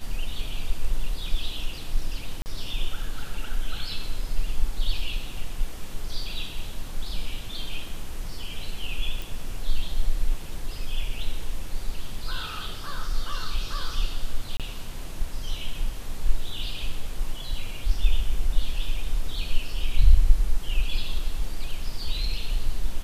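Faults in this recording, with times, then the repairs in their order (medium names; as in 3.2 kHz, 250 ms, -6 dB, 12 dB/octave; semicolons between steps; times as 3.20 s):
2.42–2.46 s: dropout 39 ms
9.22 s: pop
14.57–14.60 s: dropout 27 ms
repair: de-click; interpolate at 2.42 s, 39 ms; interpolate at 14.57 s, 27 ms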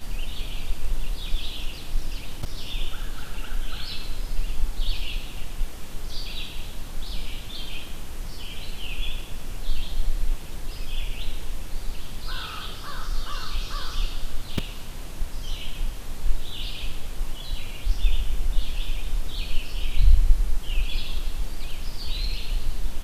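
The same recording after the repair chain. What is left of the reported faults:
nothing left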